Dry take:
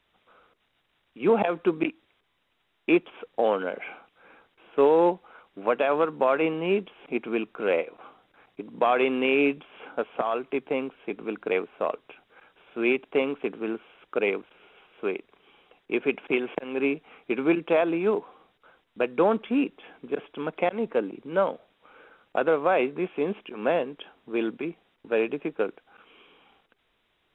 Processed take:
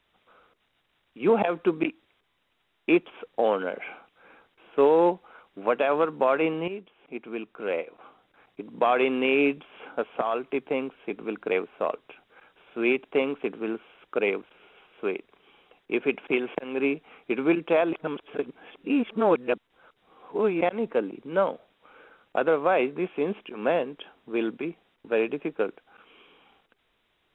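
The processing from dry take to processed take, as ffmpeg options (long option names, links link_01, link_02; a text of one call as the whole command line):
ffmpeg -i in.wav -filter_complex "[0:a]asplit=4[link_01][link_02][link_03][link_04];[link_01]atrim=end=6.68,asetpts=PTS-STARTPTS,afade=type=out:start_time=6.676:duration=0.004:curve=hsin:silence=0.223872[link_05];[link_02]atrim=start=6.68:end=17.932,asetpts=PTS-STARTPTS,afade=type=in:duration=2.12:silence=0.223872[link_06];[link_03]atrim=start=17.928:end=20.612,asetpts=PTS-STARTPTS,areverse[link_07];[link_04]atrim=start=20.608[link_08];[link_05][link_06]concat=n=2:v=0:a=1[link_09];[link_09][link_07]acrossfade=duration=0.004:curve1=hsin:curve2=hsin[link_10];[link_10][link_08]acrossfade=duration=0.004:curve1=hsin:curve2=hsin" out.wav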